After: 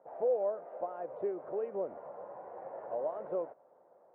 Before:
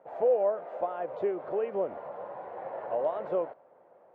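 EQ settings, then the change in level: LPF 1300 Hz 12 dB/oct; dynamic EQ 940 Hz, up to -3 dB, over -42 dBFS, Q 0.97; low shelf 190 Hz -5.5 dB; -3.5 dB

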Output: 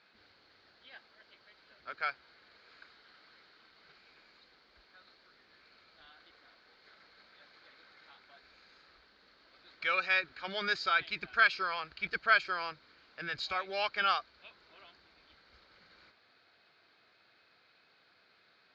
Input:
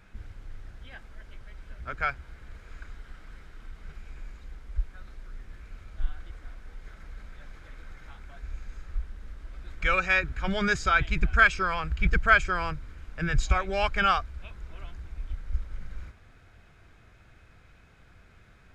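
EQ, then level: HPF 380 Hz 12 dB/oct; synth low-pass 4400 Hz, resonance Q 10; air absorption 93 m; -6.5 dB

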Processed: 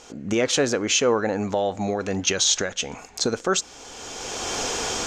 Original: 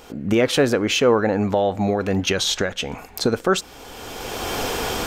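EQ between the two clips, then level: synth low-pass 6700 Hz, resonance Q 3.6; low shelf 170 Hz -5.5 dB; -3.5 dB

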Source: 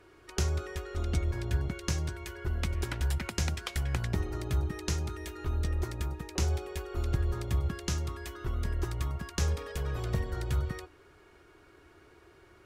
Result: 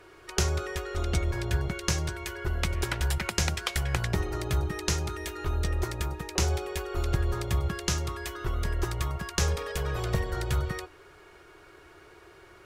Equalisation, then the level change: bell 73 Hz -5.5 dB 2.4 oct; bell 260 Hz -10.5 dB 0.39 oct; +7.0 dB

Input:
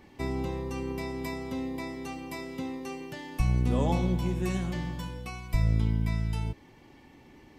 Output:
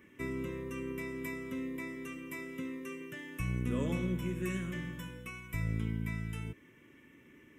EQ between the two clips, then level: HPF 260 Hz 6 dB/oct; fixed phaser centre 1900 Hz, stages 4; 0.0 dB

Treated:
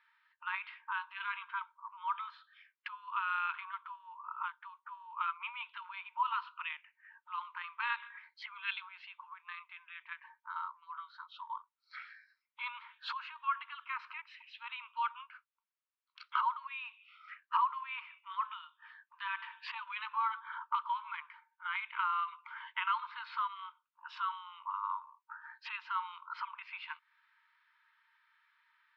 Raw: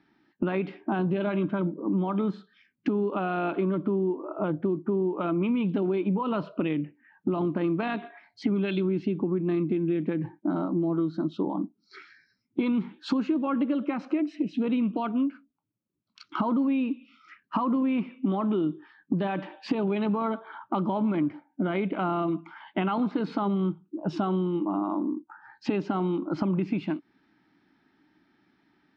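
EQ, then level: brick-wall FIR high-pass 890 Hz; air absorption 420 m; high shelf 2400 Hz +10 dB; +1.0 dB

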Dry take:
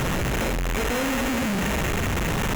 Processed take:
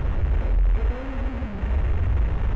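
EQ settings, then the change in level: tape spacing loss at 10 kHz 37 dB; resonant low shelf 110 Hz +12.5 dB, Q 1.5; -6.0 dB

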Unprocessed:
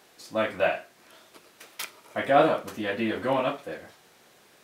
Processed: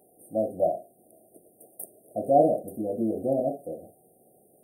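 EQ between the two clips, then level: brick-wall FIR band-stop 790–8500 Hz; low shelf 80 Hz -5.5 dB; bell 1300 Hz -3 dB 1.7 oct; +2.0 dB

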